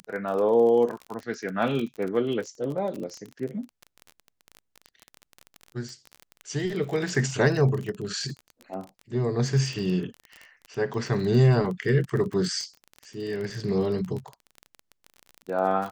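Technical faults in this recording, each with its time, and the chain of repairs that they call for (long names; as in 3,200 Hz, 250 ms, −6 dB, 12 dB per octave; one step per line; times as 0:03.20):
surface crackle 29 per second −31 dBFS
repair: click removal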